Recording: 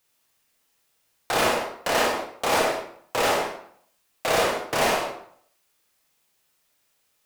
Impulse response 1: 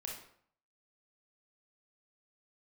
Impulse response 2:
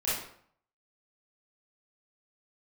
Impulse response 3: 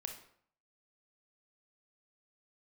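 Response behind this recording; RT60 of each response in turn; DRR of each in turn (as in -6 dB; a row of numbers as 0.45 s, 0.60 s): 1; 0.60 s, 0.60 s, 0.60 s; -1.5 dB, -10.5 dB, 4.0 dB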